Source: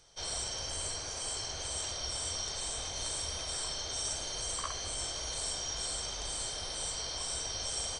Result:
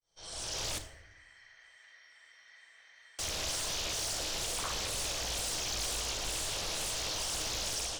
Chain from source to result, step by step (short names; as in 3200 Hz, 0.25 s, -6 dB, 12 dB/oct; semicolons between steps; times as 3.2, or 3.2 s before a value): opening faded in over 0.66 s; AGC gain up to 6.5 dB; soft clip -29 dBFS, distortion -13 dB; 0.78–3.19 band-pass 1900 Hz, Q 17; hard clip -32 dBFS, distortion -19 dB; reverb RT60 0.85 s, pre-delay 6 ms, DRR 3.5 dB; Doppler distortion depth 0.95 ms; gain -1.5 dB